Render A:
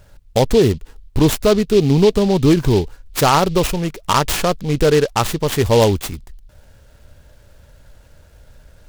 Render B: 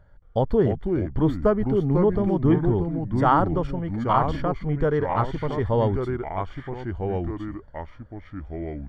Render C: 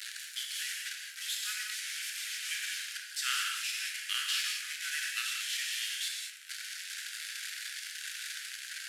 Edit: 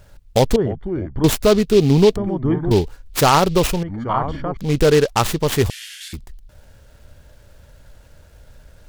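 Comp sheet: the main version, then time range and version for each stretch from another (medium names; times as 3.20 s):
A
0.56–1.24 s: from B
2.16–2.71 s: from B
3.83–4.57 s: from B
5.70–6.13 s: from C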